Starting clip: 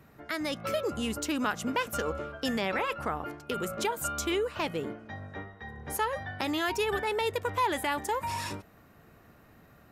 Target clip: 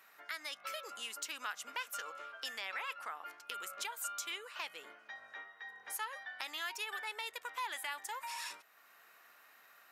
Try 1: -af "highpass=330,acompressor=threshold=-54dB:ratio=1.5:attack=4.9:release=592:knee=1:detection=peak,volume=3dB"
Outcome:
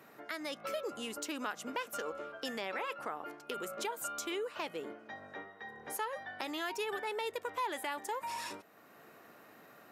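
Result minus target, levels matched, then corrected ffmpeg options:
250 Hz band +18.0 dB
-af "highpass=1.3k,acompressor=threshold=-54dB:ratio=1.5:attack=4.9:release=592:knee=1:detection=peak,volume=3dB"

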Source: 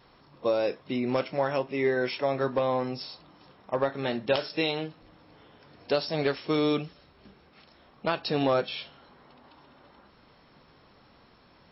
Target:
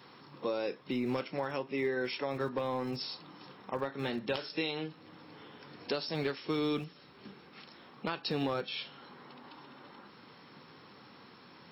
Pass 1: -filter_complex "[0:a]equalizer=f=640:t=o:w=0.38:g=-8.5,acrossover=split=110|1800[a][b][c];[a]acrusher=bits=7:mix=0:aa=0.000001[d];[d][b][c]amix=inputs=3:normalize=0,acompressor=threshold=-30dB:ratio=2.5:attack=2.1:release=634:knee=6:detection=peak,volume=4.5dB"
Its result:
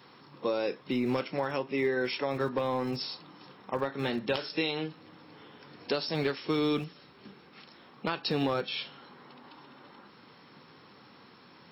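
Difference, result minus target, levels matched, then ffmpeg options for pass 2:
compressor: peak gain reduction -4 dB
-filter_complex "[0:a]equalizer=f=640:t=o:w=0.38:g=-8.5,acrossover=split=110|1800[a][b][c];[a]acrusher=bits=7:mix=0:aa=0.000001[d];[d][b][c]amix=inputs=3:normalize=0,acompressor=threshold=-36.5dB:ratio=2.5:attack=2.1:release=634:knee=6:detection=peak,volume=4.5dB"

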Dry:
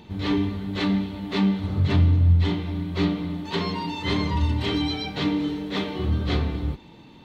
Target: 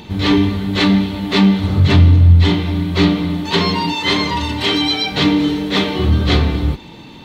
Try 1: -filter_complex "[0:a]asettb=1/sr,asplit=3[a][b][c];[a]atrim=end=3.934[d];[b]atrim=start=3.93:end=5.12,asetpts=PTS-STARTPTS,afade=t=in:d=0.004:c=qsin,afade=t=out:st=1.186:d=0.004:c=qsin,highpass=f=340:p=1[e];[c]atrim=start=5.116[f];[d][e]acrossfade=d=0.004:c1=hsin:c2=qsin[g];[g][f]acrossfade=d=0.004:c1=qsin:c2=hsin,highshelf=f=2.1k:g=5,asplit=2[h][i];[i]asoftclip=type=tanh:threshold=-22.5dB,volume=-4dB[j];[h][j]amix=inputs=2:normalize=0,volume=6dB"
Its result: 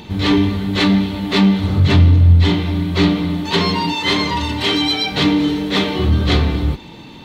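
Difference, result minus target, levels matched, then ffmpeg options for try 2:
soft clip: distortion +7 dB
-filter_complex "[0:a]asettb=1/sr,asplit=3[a][b][c];[a]atrim=end=3.934[d];[b]atrim=start=3.93:end=5.12,asetpts=PTS-STARTPTS,afade=t=in:d=0.004:c=qsin,afade=t=out:st=1.186:d=0.004:c=qsin,highpass=f=340:p=1[e];[c]atrim=start=5.116[f];[d][e]acrossfade=d=0.004:c1=hsin:c2=qsin[g];[g][f]acrossfade=d=0.004:c1=qsin:c2=hsin,highshelf=f=2.1k:g=5,asplit=2[h][i];[i]asoftclip=type=tanh:threshold=-15.5dB,volume=-4dB[j];[h][j]amix=inputs=2:normalize=0,volume=6dB"

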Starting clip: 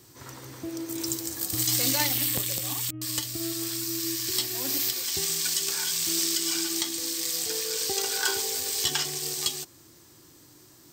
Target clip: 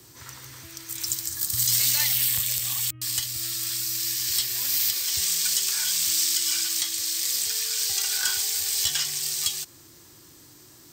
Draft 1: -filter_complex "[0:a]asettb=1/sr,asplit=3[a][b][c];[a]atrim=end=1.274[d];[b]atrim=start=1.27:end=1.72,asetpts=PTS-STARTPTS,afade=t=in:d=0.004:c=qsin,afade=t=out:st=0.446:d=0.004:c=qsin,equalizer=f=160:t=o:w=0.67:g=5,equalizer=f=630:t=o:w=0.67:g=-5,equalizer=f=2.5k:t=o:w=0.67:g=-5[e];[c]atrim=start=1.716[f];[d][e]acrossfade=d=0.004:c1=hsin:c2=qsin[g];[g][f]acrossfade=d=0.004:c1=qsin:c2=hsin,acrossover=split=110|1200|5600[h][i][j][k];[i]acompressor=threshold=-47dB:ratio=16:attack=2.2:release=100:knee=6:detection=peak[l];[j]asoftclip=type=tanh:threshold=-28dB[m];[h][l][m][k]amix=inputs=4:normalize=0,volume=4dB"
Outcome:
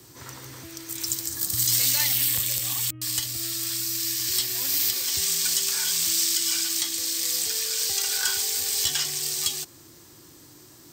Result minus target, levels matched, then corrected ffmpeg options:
compressor: peak gain reduction -9 dB
-filter_complex "[0:a]asettb=1/sr,asplit=3[a][b][c];[a]atrim=end=1.274[d];[b]atrim=start=1.27:end=1.72,asetpts=PTS-STARTPTS,afade=t=in:d=0.004:c=qsin,afade=t=out:st=0.446:d=0.004:c=qsin,equalizer=f=160:t=o:w=0.67:g=5,equalizer=f=630:t=o:w=0.67:g=-5,equalizer=f=2.5k:t=o:w=0.67:g=-5[e];[c]atrim=start=1.716[f];[d][e]acrossfade=d=0.004:c1=hsin:c2=qsin[g];[g][f]acrossfade=d=0.004:c1=qsin:c2=hsin,acrossover=split=110|1200|5600[h][i][j][k];[i]acompressor=threshold=-56.5dB:ratio=16:attack=2.2:release=100:knee=6:detection=peak[l];[j]asoftclip=type=tanh:threshold=-28dB[m];[h][l][m][k]amix=inputs=4:normalize=0,volume=4dB"

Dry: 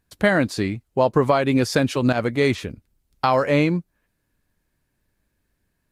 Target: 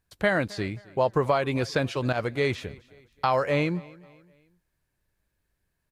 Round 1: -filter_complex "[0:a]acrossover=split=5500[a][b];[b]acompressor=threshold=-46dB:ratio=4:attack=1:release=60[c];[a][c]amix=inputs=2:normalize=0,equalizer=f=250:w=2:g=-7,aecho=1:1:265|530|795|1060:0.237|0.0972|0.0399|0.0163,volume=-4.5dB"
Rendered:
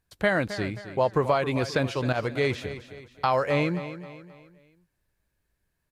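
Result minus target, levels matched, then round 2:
echo-to-direct +10 dB
-filter_complex "[0:a]acrossover=split=5500[a][b];[b]acompressor=threshold=-46dB:ratio=4:attack=1:release=60[c];[a][c]amix=inputs=2:normalize=0,equalizer=f=250:w=2:g=-7,aecho=1:1:265|530|795:0.075|0.0307|0.0126,volume=-4.5dB"

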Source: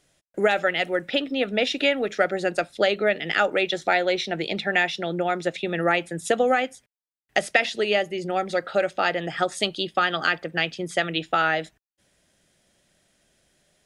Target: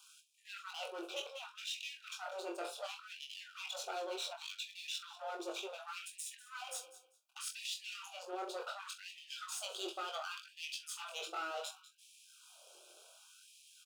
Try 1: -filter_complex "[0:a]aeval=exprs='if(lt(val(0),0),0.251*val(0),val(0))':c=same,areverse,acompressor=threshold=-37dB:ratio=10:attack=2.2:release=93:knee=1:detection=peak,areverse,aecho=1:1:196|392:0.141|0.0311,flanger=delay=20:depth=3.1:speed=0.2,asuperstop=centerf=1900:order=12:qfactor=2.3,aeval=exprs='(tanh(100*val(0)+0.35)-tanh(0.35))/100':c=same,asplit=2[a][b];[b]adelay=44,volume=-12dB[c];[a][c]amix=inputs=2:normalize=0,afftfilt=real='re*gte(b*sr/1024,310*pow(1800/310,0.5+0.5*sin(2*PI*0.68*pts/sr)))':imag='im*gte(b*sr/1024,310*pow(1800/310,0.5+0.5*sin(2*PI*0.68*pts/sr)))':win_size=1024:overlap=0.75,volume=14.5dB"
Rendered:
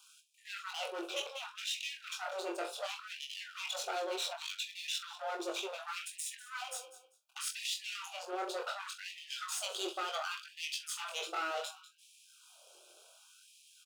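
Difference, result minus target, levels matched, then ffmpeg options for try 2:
compressor: peak gain reduction -6 dB
-filter_complex "[0:a]aeval=exprs='if(lt(val(0),0),0.251*val(0),val(0))':c=same,areverse,acompressor=threshold=-43.5dB:ratio=10:attack=2.2:release=93:knee=1:detection=peak,areverse,aecho=1:1:196|392:0.141|0.0311,flanger=delay=20:depth=3.1:speed=0.2,asuperstop=centerf=1900:order=12:qfactor=2.3,aeval=exprs='(tanh(100*val(0)+0.35)-tanh(0.35))/100':c=same,asplit=2[a][b];[b]adelay=44,volume=-12dB[c];[a][c]amix=inputs=2:normalize=0,afftfilt=real='re*gte(b*sr/1024,310*pow(1800/310,0.5+0.5*sin(2*PI*0.68*pts/sr)))':imag='im*gte(b*sr/1024,310*pow(1800/310,0.5+0.5*sin(2*PI*0.68*pts/sr)))':win_size=1024:overlap=0.75,volume=14.5dB"

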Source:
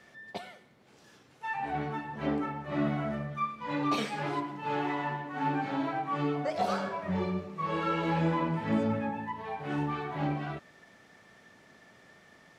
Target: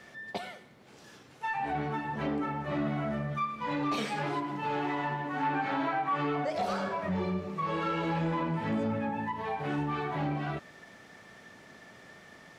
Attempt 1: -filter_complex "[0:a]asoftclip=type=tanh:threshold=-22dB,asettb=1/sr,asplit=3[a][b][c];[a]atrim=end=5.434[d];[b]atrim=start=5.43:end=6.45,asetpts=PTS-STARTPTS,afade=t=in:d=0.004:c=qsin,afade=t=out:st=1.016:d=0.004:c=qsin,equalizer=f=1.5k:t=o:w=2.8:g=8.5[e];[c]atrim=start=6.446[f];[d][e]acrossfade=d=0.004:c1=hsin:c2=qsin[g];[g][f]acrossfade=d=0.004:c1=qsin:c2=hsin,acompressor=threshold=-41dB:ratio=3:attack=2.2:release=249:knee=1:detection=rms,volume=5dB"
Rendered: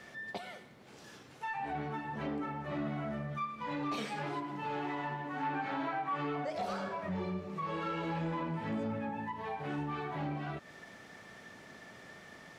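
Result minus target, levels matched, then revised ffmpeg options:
compressor: peak gain reduction +5.5 dB
-filter_complex "[0:a]asoftclip=type=tanh:threshold=-22dB,asettb=1/sr,asplit=3[a][b][c];[a]atrim=end=5.434[d];[b]atrim=start=5.43:end=6.45,asetpts=PTS-STARTPTS,afade=t=in:d=0.004:c=qsin,afade=t=out:st=1.016:d=0.004:c=qsin,equalizer=f=1.5k:t=o:w=2.8:g=8.5[e];[c]atrim=start=6.446[f];[d][e]acrossfade=d=0.004:c1=hsin:c2=qsin[g];[g][f]acrossfade=d=0.004:c1=qsin:c2=hsin,acompressor=threshold=-33dB:ratio=3:attack=2.2:release=249:knee=1:detection=rms,volume=5dB"

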